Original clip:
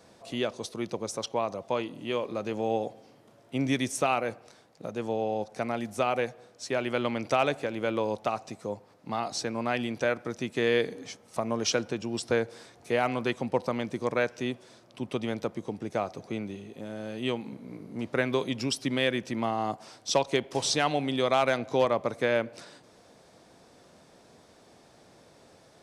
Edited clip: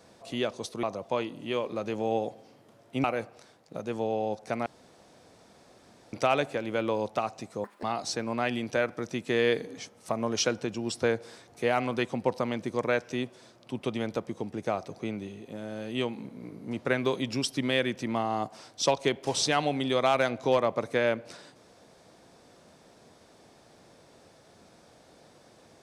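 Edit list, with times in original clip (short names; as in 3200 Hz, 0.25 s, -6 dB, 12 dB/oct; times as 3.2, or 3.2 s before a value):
0.83–1.42 cut
3.63–4.13 cut
5.75–7.22 room tone
8.73–9.11 speed 198%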